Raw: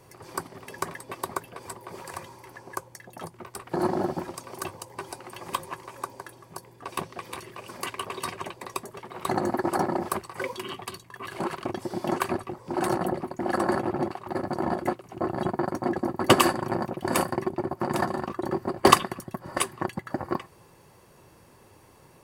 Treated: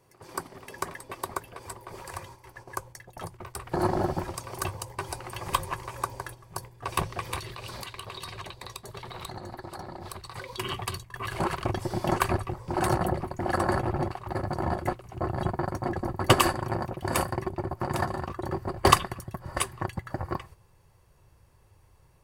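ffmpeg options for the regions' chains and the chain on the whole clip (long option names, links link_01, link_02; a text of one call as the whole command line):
ffmpeg -i in.wav -filter_complex "[0:a]asettb=1/sr,asplit=3[link_01][link_02][link_03];[link_01]atrim=end=7.384[link_04];[link_02]atrim=start=7.38:end=10.59,asetpts=PTS-STARTPTS,afade=type=in:duration=0.004:curve=qsin,afade=type=out:start_time=3.206:duration=0.004:curve=qsin,equalizer=frequency=4000:width_type=o:width=0.46:gain=12.5,acompressor=threshold=-39dB:ratio=12:attack=3.2:release=140:knee=1:detection=peak[link_05];[link_03]atrim=start=10.586[link_06];[link_04][link_05]acrossfade=duration=0.004:curve1=hsin:curve2=qsin[link_07];[link_07][link_06]acrossfade=duration=0.004:curve1=qsin:curve2=hsin,agate=range=-8dB:threshold=-46dB:ratio=16:detection=peak,asubboost=boost=11.5:cutoff=71,dynaudnorm=framelen=490:gausssize=17:maxgain=6.5dB,volume=-1.5dB" out.wav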